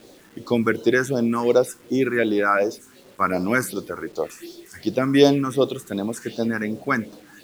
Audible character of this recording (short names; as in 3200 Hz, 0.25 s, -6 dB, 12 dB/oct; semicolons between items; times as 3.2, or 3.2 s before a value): phasing stages 4, 2.7 Hz, lowest notch 580–2000 Hz; a quantiser's noise floor 10-bit, dither none